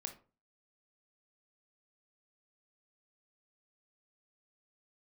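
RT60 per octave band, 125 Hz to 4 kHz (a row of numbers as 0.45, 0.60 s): 0.45, 0.40, 0.40, 0.35, 0.25, 0.20 s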